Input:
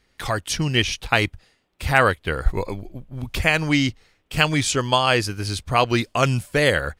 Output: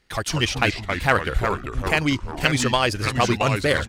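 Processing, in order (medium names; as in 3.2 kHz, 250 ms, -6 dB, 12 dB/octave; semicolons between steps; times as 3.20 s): in parallel at -4 dB: one-sided clip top -25 dBFS; on the sum: tempo 1.8×; ever faster or slower copies 154 ms, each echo -3 st, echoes 3, each echo -6 dB; trim -4 dB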